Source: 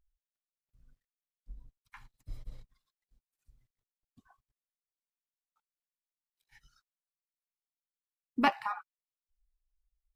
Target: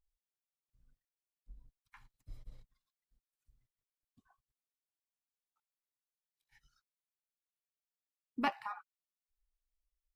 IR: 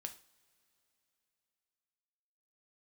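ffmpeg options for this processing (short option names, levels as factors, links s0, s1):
-af "volume=0.447"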